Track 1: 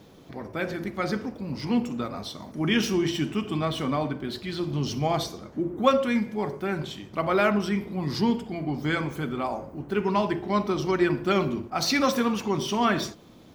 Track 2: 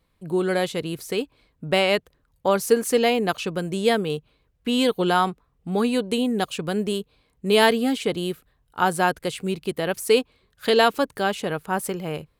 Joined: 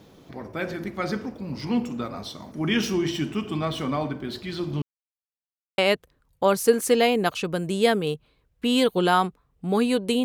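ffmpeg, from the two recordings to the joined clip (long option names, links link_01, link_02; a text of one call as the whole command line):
ffmpeg -i cue0.wav -i cue1.wav -filter_complex "[0:a]apad=whole_dur=10.24,atrim=end=10.24,asplit=2[link_01][link_02];[link_01]atrim=end=4.82,asetpts=PTS-STARTPTS,afade=type=out:start_time=4.816:duration=0.004:curve=hsin[link_03];[link_02]atrim=start=4.82:end=5.78,asetpts=PTS-STARTPTS,volume=0[link_04];[1:a]atrim=start=1.81:end=6.27,asetpts=PTS-STARTPTS,afade=type=in:duration=0.004:curve=hsin[link_05];[link_03][link_04][link_05]concat=n=3:v=0:a=1" out.wav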